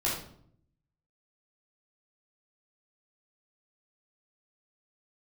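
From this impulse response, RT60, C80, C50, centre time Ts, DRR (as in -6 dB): 0.65 s, 7.5 dB, 3.0 dB, 42 ms, -6.0 dB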